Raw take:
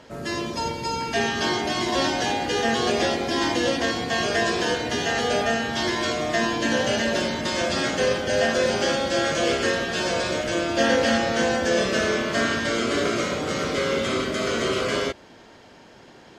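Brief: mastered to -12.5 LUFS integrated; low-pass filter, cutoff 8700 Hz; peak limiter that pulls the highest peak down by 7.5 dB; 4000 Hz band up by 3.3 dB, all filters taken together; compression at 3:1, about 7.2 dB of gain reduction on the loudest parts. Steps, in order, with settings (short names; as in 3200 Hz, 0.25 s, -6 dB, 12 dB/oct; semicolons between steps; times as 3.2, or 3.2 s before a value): LPF 8700 Hz; bell 4000 Hz +4.5 dB; compressor 3:1, threshold -26 dBFS; gain +17 dB; limiter -4 dBFS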